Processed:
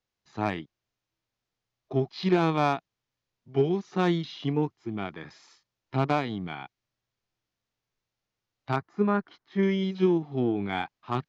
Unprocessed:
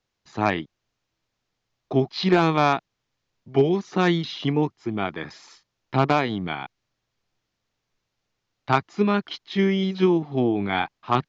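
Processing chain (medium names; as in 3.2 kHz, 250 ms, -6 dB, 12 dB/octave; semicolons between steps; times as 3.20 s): Chebyshev shaper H 7 -35 dB, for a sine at -7.5 dBFS; harmonic-percussive split percussive -7 dB; 8.76–9.63 s: resonant high shelf 2.1 kHz -8.5 dB, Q 1.5; trim -3.5 dB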